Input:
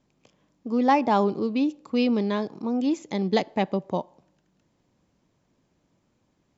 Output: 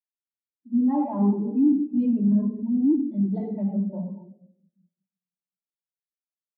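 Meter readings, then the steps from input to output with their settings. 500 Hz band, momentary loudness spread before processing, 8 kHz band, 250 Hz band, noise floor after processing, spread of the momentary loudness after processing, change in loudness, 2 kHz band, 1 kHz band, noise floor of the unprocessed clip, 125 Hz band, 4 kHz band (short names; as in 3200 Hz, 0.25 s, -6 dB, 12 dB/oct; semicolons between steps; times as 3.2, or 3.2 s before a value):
-9.0 dB, 8 LU, n/a, +4.0 dB, under -85 dBFS, 8 LU, +1.5 dB, under -25 dB, -11.5 dB, -71 dBFS, +5.0 dB, under -35 dB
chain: shoebox room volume 2000 m³, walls mixed, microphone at 2.8 m; added harmonics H 5 -15 dB, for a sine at -8 dBFS; in parallel at -8 dB: overloaded stage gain 25.5 dB; on the sum: spectral expander 2.5:1; gain -6 dB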